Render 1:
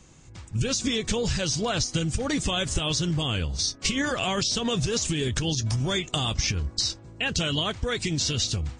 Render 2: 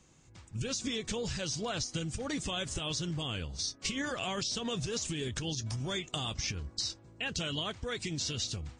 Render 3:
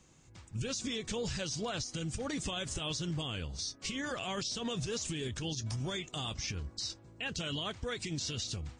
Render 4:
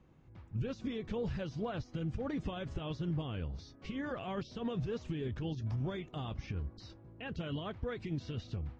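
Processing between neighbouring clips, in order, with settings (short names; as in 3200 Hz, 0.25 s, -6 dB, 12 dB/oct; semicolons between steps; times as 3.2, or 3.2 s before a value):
low shelf 77 Hz -6.5 dB; gain -8.5 dB
limiter -27.5 dBFS, peak gain reduction 7 dB
tape spacing loss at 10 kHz 44 dB; gain +2 dB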